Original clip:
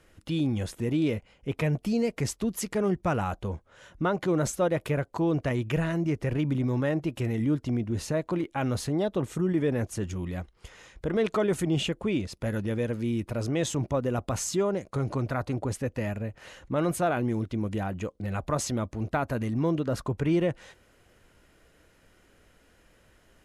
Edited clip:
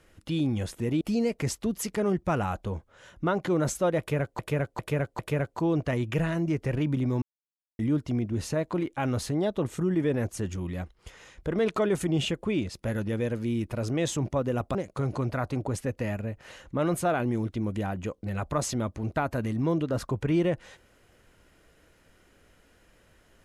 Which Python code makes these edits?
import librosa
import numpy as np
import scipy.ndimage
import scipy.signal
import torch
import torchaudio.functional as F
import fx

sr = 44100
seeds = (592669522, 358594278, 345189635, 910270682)

y = fx.edit(x, sr, fx.cut(start_s=1.01, length_s=0.78),
    fx.repeat(start_s=4.77, length_s=0.4, count=4),
    fx.silence(start_s=6.8, length_s=0.57),
    fx.cut(start_s=14.33, length_s=0.39), tone=tone)